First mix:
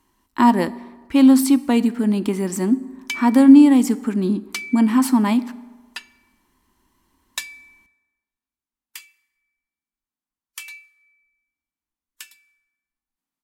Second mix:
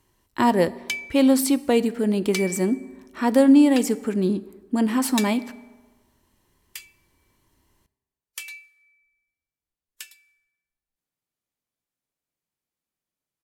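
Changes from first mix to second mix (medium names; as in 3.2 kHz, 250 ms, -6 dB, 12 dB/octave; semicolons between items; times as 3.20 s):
background: entry -2.20 s; master: add graphic EQ 125/250/500/1000 Hz +9/-10/+9/-7 dB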